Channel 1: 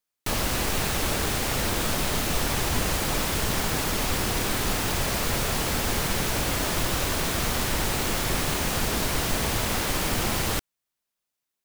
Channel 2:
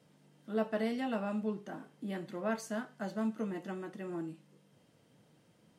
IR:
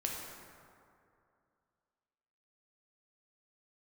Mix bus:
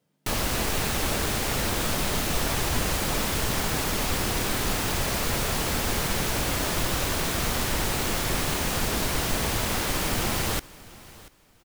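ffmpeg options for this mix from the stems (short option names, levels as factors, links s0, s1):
-filter_complex "[0:a]volume=0.944,asplit=2[s0][s1];[s1]volume=0.0944[s2];[1:a]volume=0.398[s3];[s2]aecho=0:1:687|1374|2061|2748:1|0.22|0.0484|0.0106[s4];[s0][s3][s4]amix=inputs=3:normalize=0"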